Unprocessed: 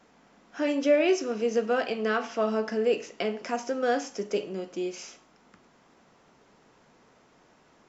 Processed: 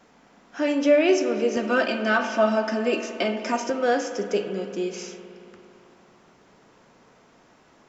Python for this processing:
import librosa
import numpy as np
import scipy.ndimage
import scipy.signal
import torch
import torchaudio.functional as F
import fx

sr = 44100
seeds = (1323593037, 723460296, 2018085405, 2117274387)

y = fx.comb(x, sr, ms=3.3, depth=1.0, at=(1.56, 3.7))
y = fx.rev_spring(y, sr, rt60_s=2.9, pass_ms=(56,), chirp_ms=55, drr_db=8.5)
y = y * 10.0 ** (3.5 / 20.0)